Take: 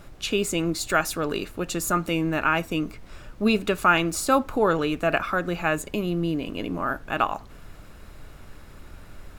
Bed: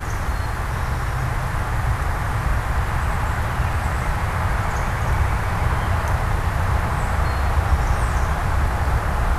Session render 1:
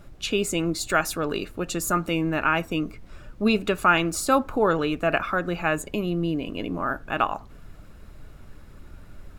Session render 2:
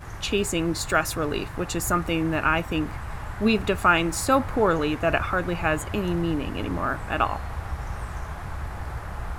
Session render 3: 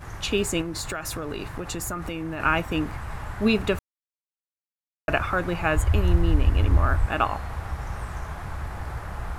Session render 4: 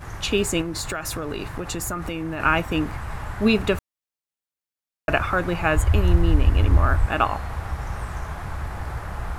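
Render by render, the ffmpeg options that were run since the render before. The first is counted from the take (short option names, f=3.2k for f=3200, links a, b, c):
-af "afftdn=nr=6:nf=-46"
-filter_complex "[1:a]volume=-13dB[a];[0:a][a]amix=inputs=2:normalize=0"
-filter_complex "[0:a]asettb=1/sr,asplit=3[a][b][c];[a]atrim=end=0.614[d];[b]atrim=start=0.61:end=2.4,asetpts=PTS-STARTPTS,afade=t=in:d=0.004:c=qsin,afade=t=out:st=1.786:d=0.004:c=qsin,acompressor=threshold=-26dB:ratio=12:attack=3.2:release=140:knee=1:detection=peak[e];[c]atrim=start=2.396[f];[d][e]acrossfade=d=0.004:c1=hsin:c2=qsin[g];[g][f]acrossfade=d=0.004:c1=qsin:c2=hsin,asettb=1/sr,asplit=3[h][i][j];[h]atrim=end=5.754[k];[i]atrim=start=5.75:end=7.06,asetpts=PTS-STARTPTS,afade=t=in:d=0.004:c=qsin,afade=t=out:st=1.306:d=0.004:c=qsin,lowshelf=f=110:t=q:w=1.5:g=14[l];[j]atrim=start=7.056[m];[k][l]acrossfade=d=0.004:c1=hsin:c2=qsin[n];[n][m]acrossfade=d=0.004:c1=qsin:c2=hsin,asplit=3[o][p][q];[o]atrim=end=3.79,asetpts=PTS-STARTPTS,afade=t=out:st=3.786:d=0.004:c=hsin[r];[p]atrim=start=3.79:end=5.08,asetpts=PTS-STARTPTS,volume=0[s];[q]atrim=start=5.08,asetpts=PTS-STARTPTS,afade=t=in:d=0.004:c=hsin[t];[r][s][t]concat=n=3:v=0:a=1"
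-af "volume=2.5dB"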